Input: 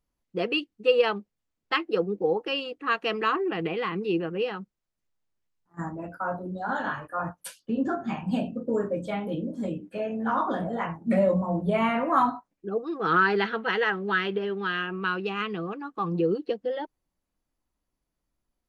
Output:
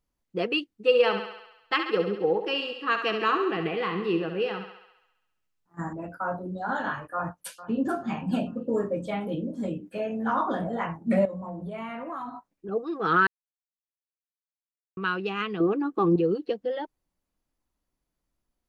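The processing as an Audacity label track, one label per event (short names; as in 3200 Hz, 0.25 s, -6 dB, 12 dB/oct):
0.690000	5.930000	thinning echo 68 ms, feedback 64%, high-pass 350 Hz, level -7.5 dB
7.140000	7.950000	echo throw 0.44 s, feedback 40%, level -15 dB
8.690000	9.160000	Butterworth band-stop 1500 Hz, Q 7.8
9.860000	10.330000	high shelf 6100 Hz +5.5 dB
11.250000	12.690000	compressor, threshold -33 dBFS
13.270000	14.970000	mute
15.600000	16.160000	bell 350 Hz +14 dB 1.2 oct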